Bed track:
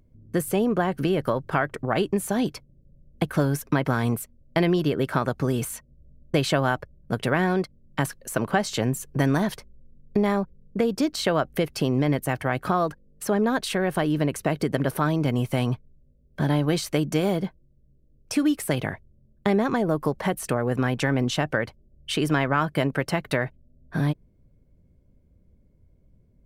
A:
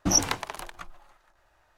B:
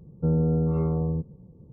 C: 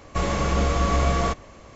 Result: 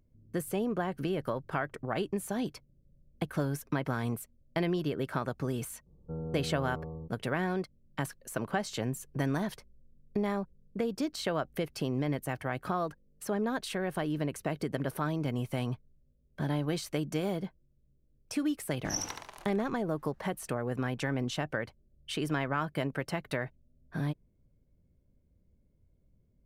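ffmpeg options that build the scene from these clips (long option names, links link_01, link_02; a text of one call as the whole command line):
ffmpeg -i bed.wav -i cue0.wav -i cue1.wav -filter_complex "[0:a]volume=-9dB[link_01];[2:a]equalizer=frequency=150:width=0.4:gain=-8.5[link_02];[1:a]aecho=1:1:72|144|216|288:0.631|0.202|0.0646|0.0207[link_03];[link_02]atrim=end=1.72,asetpts=PTS-STARTPTS,volume=-8dB,afade=type=in:duration=0.004:curve=hsin,afade=type=out:start_time=1.716:duration=0.004:curve=hsin,adelay=5860[link_04];[link_03]atrim=end=1.77,asetpts=PTS-STARTPTS,volume=-13.5dB,afade=type=in:duration=0.004:curve=hsin,afade=type=out:start_time=1.766:duration=0.004:curve=hsin,adelay=18790[link_05];[link_01][link_04][link_05]amix=inputs=3:normalize=0" out.wav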